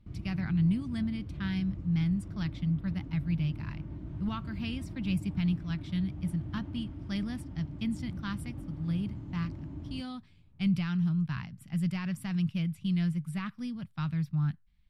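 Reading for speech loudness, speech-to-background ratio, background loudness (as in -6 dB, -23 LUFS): -33.5 LUFS, 8.5 dB, -42.0 LUFS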